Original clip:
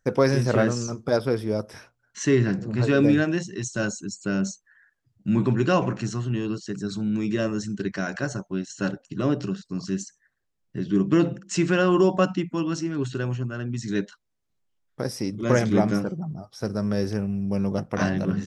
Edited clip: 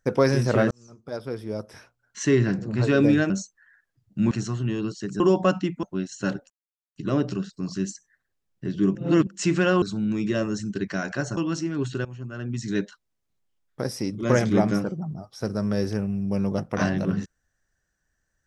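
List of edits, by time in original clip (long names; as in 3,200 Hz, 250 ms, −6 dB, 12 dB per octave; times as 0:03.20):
0:00.71–0:02.21: fade in
0:03.30–0:04.39: remove
0:05.40–0:05.97: remove
0:06.86–0:08.41: swap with 0:11.94–0:12.57
0:09.08: splice in silence 0.46 s
0:11.07–0:11.39: reverse
0:13.25–0:13.72: fade in, from −18 dB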